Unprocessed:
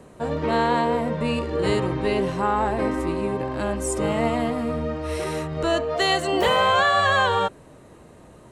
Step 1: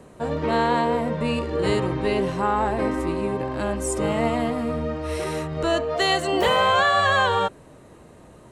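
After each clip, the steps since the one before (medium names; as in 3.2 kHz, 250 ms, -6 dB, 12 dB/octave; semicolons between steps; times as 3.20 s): no audible change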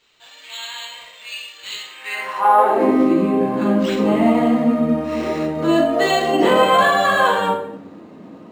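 high-pass sweep 3.3 kHz -> 230 Hz, 1.87–2.94 s; simulated room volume 200 m³, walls mixed, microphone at 1.9 m; decimation joined by straight lines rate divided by 4×; trim -2.5 dB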